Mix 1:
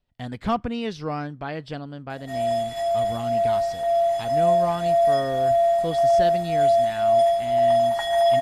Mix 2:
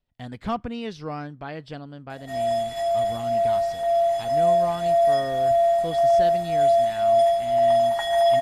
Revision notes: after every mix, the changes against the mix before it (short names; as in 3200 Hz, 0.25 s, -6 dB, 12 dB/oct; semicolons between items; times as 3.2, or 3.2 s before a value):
speech -3.5 dB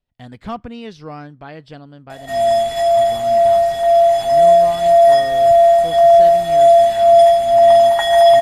background +9.5 dB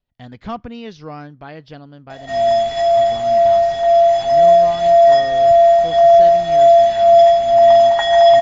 master: add steep low-pass 7000 Hz 96 dB/oct